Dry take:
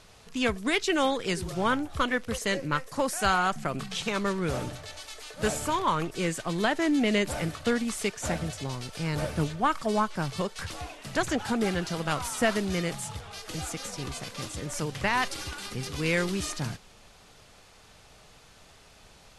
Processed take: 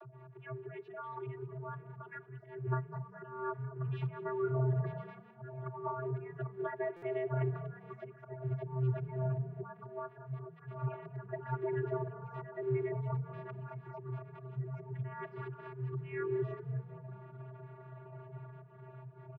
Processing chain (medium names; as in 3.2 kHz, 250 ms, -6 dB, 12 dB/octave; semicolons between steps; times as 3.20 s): coarse spectral quantiser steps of 30 dB; low-pass 1.8 kHz 24 dB/octave; harmonic-percussive split percussive +5 dB; compression 6:1, threshold -34 dBFS, peak gain reduction 16 dB; slow attack 259 ms; upward compressor, threshold -51 dBFS; vocoder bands 32, square 129 Hz; frequency-shifting echo 199 ms, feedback 38%, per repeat +30 Hz, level -18 dB; on a send at -24 dB: reverberation RT60 1.2 s, pre-delay 43 ms; on the sum: buffer glitch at 6.96 s, samples 256, times 10; trim +5 dB